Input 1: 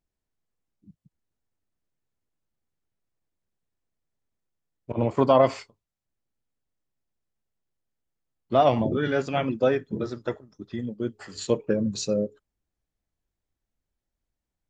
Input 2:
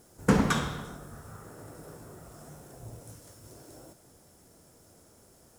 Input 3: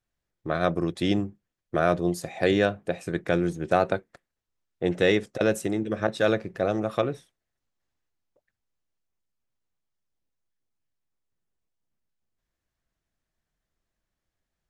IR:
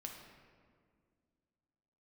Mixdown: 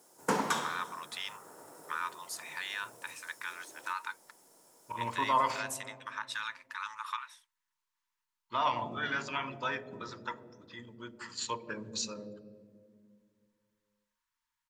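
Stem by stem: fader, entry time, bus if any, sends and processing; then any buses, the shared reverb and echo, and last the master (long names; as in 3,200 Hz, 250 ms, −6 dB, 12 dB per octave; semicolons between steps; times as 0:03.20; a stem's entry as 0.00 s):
−2.0 dB, 0.00 s, bus A, send −13.5 dB, no processing
−4.0 dB, 0.00 s, no bus, no send, Bessel high-pass filter 190 Hz, order 8; bass and treble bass −10 dB, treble +3 dB
−1.5 dB, 0.15 s, bus A, no send, no processing
bus A: 0.0 dB, linear-phase brick-wall high-pass 870 Hz; brickwall limiter −25.5 dBFS, peak gain reduction 11 dB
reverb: on, RT60 2.0 s, pre-delay 7 ms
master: parametric band 940 Hz +8.5 dB 0.32 octaves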